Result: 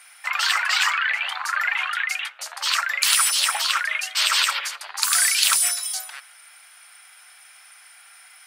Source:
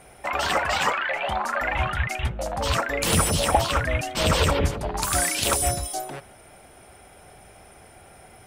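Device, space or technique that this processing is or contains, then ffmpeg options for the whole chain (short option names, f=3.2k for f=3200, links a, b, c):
headphones lying on a table: -af "highpass=f=1.3k:w=0.5412,highpass=f=1.3k:w=1.3066,equalizer=f=4.5k:t=o:w=0.37:g=5,volume=5.5dB"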